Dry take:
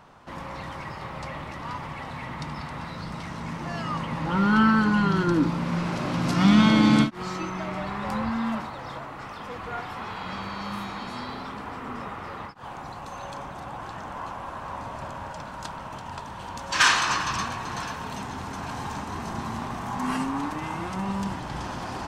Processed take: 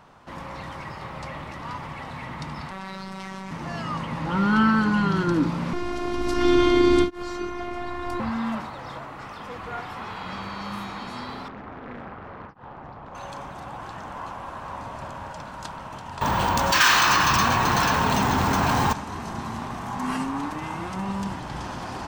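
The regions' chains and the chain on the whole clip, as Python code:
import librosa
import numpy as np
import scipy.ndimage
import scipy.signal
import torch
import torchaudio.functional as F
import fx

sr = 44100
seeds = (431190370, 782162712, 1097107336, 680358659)

y = fx.chain(x, sr, fx.robotise(hz=191.0),
    fx.low_shelf(hz=190.0, db=-5.0),
    fx.env_flatten(amount_pct=100), at=(2.71, 3.51))
y = fx.chain(y, sr, fx.low_shelf(hz=310.0, db=9.0),
    fx.robotise(hz=352.0), at=(5.73, 8.2))
y = fx.chain(y, sr, fx.spacing_loss(db_at_10k=37),
    fx.doppler_dist(depth_ms=0.79), at=(11.48, 13.15))
y = fx.chain(y, sr, fx.resample_bad(factor=2, down='filtered', up='hold'),
    fx.env_flatten(amount_pct=70), at=(16.21, 18.93))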